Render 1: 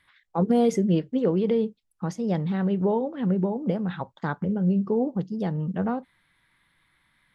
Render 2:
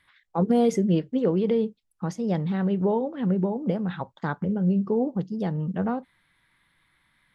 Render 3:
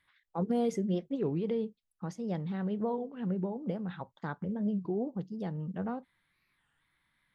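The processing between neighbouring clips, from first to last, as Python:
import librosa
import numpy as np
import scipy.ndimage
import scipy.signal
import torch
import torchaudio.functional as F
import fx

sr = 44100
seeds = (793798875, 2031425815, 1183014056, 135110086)

y1 = x
y2 = fx.record_warp(y1, sr, rpm=33.33, depth_cents=250.0)
y2 = F.gain(torch.from_numpy(y2), -9.0).numpy()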